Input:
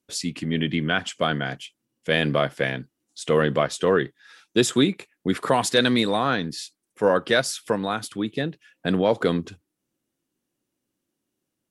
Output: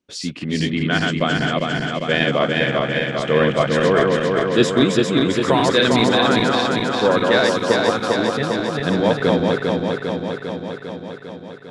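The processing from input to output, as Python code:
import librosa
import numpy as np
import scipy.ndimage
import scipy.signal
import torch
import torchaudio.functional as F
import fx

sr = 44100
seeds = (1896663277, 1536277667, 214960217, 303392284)

y = fx.reverse_delay_fb(x, sr, ms=200, feedback_pct=82, wet_db=-2.0)
y = scipy.signal.sosfilt(scipy.signal.butter(2, 5300.0, 'lowpass', fs=sr, output='sos'), y)
y = F.gain(torch.from_numpy(y), 2.0).numpy()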